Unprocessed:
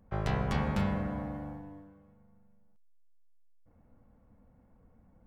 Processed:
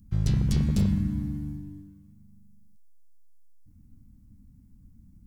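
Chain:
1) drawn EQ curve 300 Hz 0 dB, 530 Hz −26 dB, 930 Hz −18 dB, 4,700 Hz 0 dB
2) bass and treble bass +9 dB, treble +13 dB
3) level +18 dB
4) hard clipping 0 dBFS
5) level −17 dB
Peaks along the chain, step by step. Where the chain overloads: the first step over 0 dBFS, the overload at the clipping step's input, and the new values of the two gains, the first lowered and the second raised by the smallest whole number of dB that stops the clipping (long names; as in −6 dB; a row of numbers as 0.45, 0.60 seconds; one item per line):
−18.5, −11.0, +7.0, 0.0, −17.0 dBFS
step 3, 7.0 dB
step 3 +11 dB, step 5 −10 dB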